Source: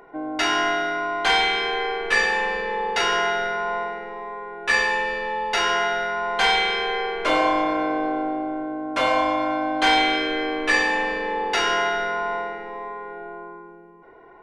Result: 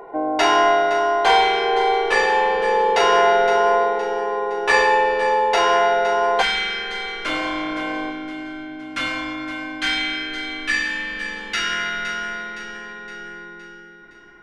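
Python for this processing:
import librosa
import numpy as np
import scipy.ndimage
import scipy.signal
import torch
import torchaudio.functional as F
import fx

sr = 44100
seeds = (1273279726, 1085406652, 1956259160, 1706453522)

y = fx.echo_feedback(x, sr, ms=515, feedback_pct=47, wet_db=-11.5)
y = fx.rider(y, sr, range_db=4, speed_s=2.0)
y = fx.band_shelf(y, sr, hz=630.0, db=fx.steps((0.0, 8.5), (6.41, -8.5), (8.1, -15.0)), octaves=1.7)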